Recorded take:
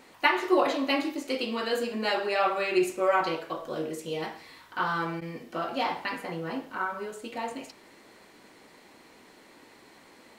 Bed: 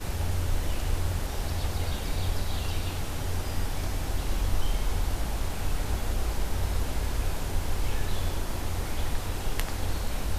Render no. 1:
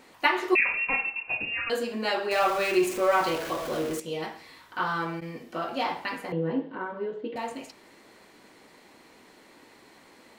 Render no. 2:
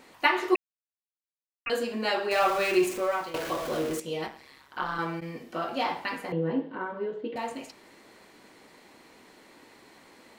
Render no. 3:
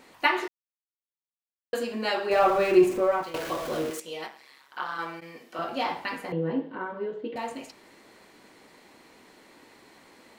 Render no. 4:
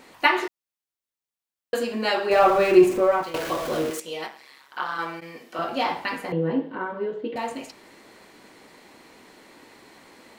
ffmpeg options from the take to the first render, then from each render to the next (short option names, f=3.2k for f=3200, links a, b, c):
-filter_complex "[0:a]asettb=1/sr,asplit=3[a][b][c];[a]atrim=end=0.554[d];[b]atrim=start=0.55:end=1.7,asetpts=PTS-STARTPTS,afade=t=in:d=0.004:c=qsin,afade=t=out:st=1.146:d=0.004:c=qsin,lowpass=f=2.6k:t=q:w=0.5098,lowpass=f=2.6k:t=q:w=0.6013,lowpass=f=2.6k:t=q:w=0.9,lowpass=f=2.6k:t=q:w=2.563,afreqshift=-3000[e];[c]atrim=start=1.696[f];[d][e]acrossfade=d=0.004:c1=hsin:c2=qsin[g];[g][f]acrossfade=d=0.004:c1=qsin:c2=hsin,asettb=1/sr,asplit=3[h][i][j];[h]atrim=end=2.314[k];[i]atrim=start=2.31:end=4,asetpts=PTS-STARTPTS,afade=t=in:d=0.004:c=qsin,afade=t=out:st=1.686:d=0.004:c=qsin,aeval=exprs='val(0)+0.5*0.0266*sgn(val(0))':c=same[l];[j]atrim=start=3.996[m];[k][l]acrossfade=d=0.004:c1=hsin:c2=qsin[n];[n][m]acrossfade=d=0.004:c1=qsin:c2=hsin,asettb=1/sr,asplit=3[o][p][q];[o]atrim=end=6.324[r];[p]atrim=start=6.32:end=7.36,asetpts=PTS-STARTPTS,afade=t=in:d=0.004:c=qsin,afade=t=out:st=1.036:d=0.004:c=qsin,highpass=130,equalizer=f=160:t=q:w=4:g=9,equalizer=f=290:t=q:w=4:g=9,equalizer=f=470:t=q:w=4:g=9,equalizer=f=710:t=q:w=4:g=-5,equalizer=f=1.3k:t=q:w=4:g=-10,equalizer=f=2.4k:t=q:w=4:g=-9,lowpass=f=3.1k:w=0.5412,lowpass=f=3.1k:w=1.3066[s];[q]atrim=start=7.356[t];[r][s]acrossfade=d=0.004:c1=hsin:c2=qsin[u];[u][t]acrossfade=d=0.004:c1=qsin:c2=hsin"
-filter_complex "[0:a]asettb=1/sr,asplit=3[a][b][c];[a]atrim=end=4.274[d];[b]atrim=start=4.27:end=4.99,asetpts=PTS-STARTPTS,afade=t=in:d=0.004:c=qsin,afade=t=out:st=0.716:d=0.004:c=qsin,tremolo=f=140:d=0.824[e];[c]atrim=start=4.986[f];[d][e]acrossfade=d=0.004:c1=hsin:c2=qsin[g];[g][f]acrossfade=d=0.004:c1=qsin:c2=hsin,asplit=4[h][i][j][k];[h]atrim=end=0.56,asetpts=PTS-STARTPTS,afade=t=out:st=0.556:d=0.004:c=hsin[l];[i]atrim=start=0.56:end=1.66,asetpts=PTS-STARTPTS,volume=0[m];[j]atrim=start=1.66:end=3.34,asetpts=PTS-STARTPTS,afade=t=in:d=0.004:c=hsin,afade=t=out:st=1.15:d=0.53:silence=0.16788[n];[k]atrim=start=3.34,asetpts=PTS-STARTPTS,afade=t=in:d=0.004:c=hsin:silence=0.16788[o];[l][m][n][o]concat=n=4:v=0:a=1"
-filter_complex "[0:a]asettb=1/sr,asplit=3[a][b][c];[a]atrim=end=2.304[d];[b]atrim=start=2.3:end=3.23,asetpts=PTS-STARTPTS,afade=t=in:d=0.004:c=qsin,afade=t=out:st=0.926:d=0.004:c=qsin,tiltshelf=f=1.4k:g=6.5[e];[c]atrim=start=3.226[f];[d][e]acrossfade=d=0.004:c1=hsin:c2=qsin[g];[g][f]acrossfade=d=0.004:c1=qsin:c2=hsin,asettb=1/sr,asplit=3[h][i][j];[h]atrim=end=3.904[k];[i]atrim=start=3.9:end=5.59,asetpts=PTS-STARTPTS,afade=t=in:d=0.004:c=qsin,afade=t=out:st=1.686:d=0.004:c=qsin,highpass=f=660:p=1[l];[j]atrim=start=5.586[m];[k][l]acrossfade=d=0.004:c1=hsin:c2=qsin[n];[n][m]acrossfade=d=0.004:c1=qsin:c2=hsin,asplit=3[o][p][q];[o]atrim=end=0.48,asetpts=PTS-STARTPTS,afade=t=out:st=0.476:d=0.004:c=hsin[r];[p]atrim=start=0.48:end=1.73,asetpts=PTS-STARTPTS,volume=0[s];[q]atrim=start=1.73,asetpts=PTS-STARTPTS,afade=t=in:d=0.004:c=hsin[t];[r][s][t]concat=n=3:v=0:a=1"
-af "volume=4dB"